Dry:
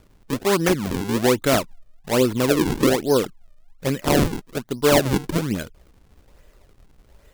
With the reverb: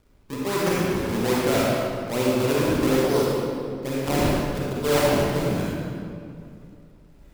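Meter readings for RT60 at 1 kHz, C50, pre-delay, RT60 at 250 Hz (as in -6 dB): 2.3 s, -4.5 dB, 33 ms, 2.9 s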